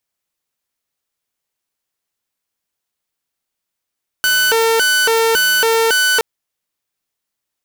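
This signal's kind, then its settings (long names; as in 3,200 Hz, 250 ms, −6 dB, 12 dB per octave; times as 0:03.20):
siren hi-lo 453–1,500 Hz 1.8 per second saw −9 dBFS 1.97 s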